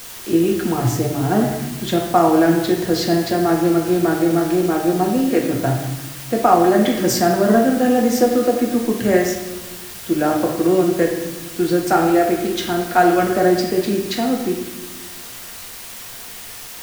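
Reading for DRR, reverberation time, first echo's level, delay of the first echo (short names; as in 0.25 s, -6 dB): -0.5 dB, 1.1 s, none, none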